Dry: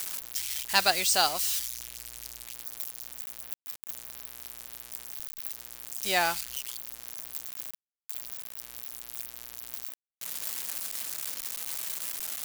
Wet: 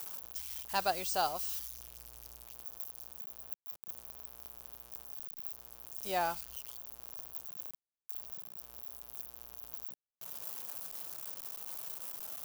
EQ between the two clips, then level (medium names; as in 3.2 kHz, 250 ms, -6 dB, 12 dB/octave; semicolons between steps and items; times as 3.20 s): ten-band graphic EQ 250 Hz -6 dB, 2 kHz -12 dB, 4 kHz -8 dB, 8 kHz -9 dB, 16 kHz -6 dB; -2.0 dB